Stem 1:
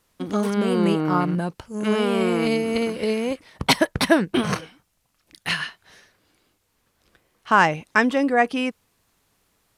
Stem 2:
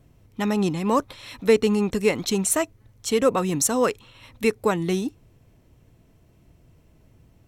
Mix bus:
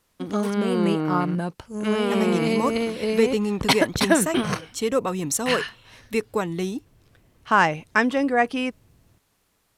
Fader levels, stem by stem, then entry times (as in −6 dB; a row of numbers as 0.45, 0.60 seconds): −1.5, −3.0 decibels; 0.00, 1.70 seconds